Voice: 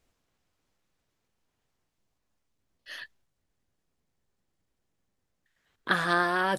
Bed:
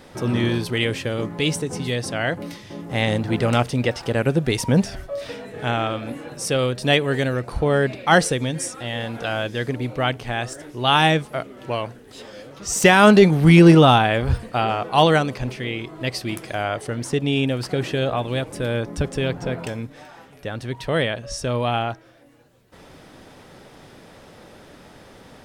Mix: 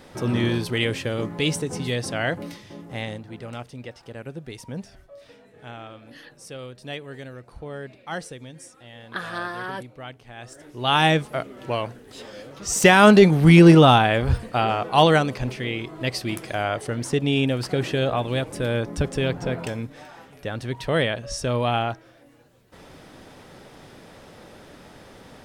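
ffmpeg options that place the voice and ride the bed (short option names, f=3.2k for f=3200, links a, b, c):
-filter_complex "[0:a]adelay=3250,volume=-5.5dB[a];[1:a]volume=14.5dB,afade=t=out:st=2.35:d=0.9:silence=0.177828,afade=t=in:st=10.35:d=0.81:silence=0.158489[b];[a][b]amix=inputs=2:normalize=0"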